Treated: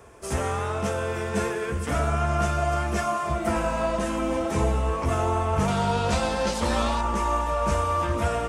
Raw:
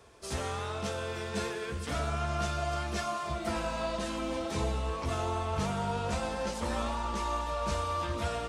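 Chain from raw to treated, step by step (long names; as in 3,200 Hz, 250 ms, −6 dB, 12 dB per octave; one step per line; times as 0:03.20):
parametric band 4,100 Hz −12.5 dB 0.86 octaves, from 0:05.68 +2 dB, from 0:07.01 −11.5 dB
level +8.5 dB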